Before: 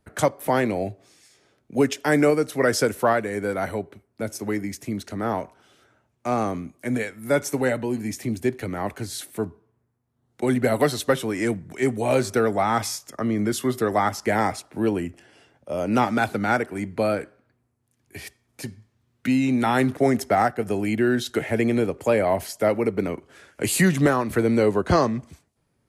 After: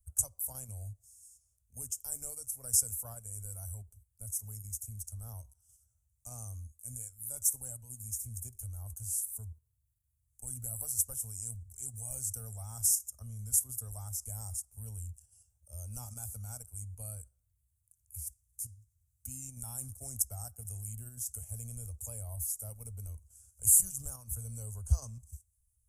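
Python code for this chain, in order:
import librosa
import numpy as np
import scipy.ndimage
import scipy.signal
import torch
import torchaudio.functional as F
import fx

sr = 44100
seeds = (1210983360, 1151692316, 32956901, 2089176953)

p1 = scipy.signal.sosfilt(scipy.signal.cheby2(4, 40, [150.0, 4200.0], 'bandstop', fs=sr, output='sos'), x)
p2 = fx.level_steps(p1, sr, step_db=18)
p3 = p1 + (p2 * 10.0 ** (1.5 / 20.0))
y = p3 * 10.0 ** (2.5 / 20.0)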